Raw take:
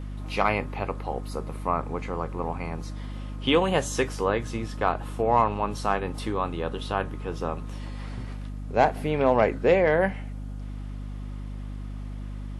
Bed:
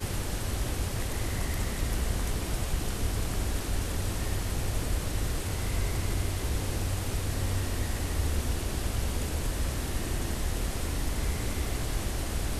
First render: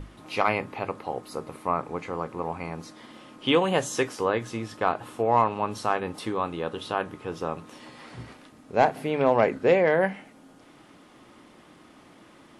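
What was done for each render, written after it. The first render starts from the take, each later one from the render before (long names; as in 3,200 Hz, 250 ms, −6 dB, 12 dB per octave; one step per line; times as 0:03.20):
mains-hum notches 50/100/150/200/250 Hz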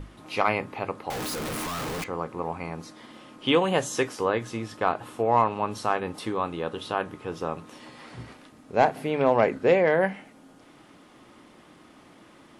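0:01.10–0:02.04: sign of each sample alone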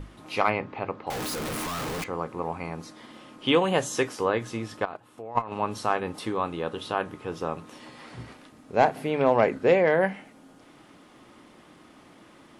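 0:00.50–0:01.07: high-frequency loss of the air 170 metres
0:04.85–0:05.52: output level in coarse steps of 19 dB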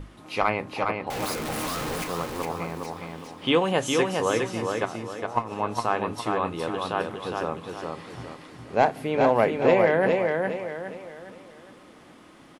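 repeating echo 411 ms, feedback 38%, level −4 dB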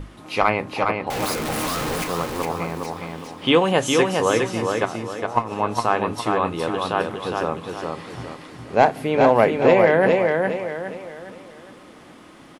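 level +5 dB
brickwall limiter −3 dBFS, peak gain reduction 1.5 dB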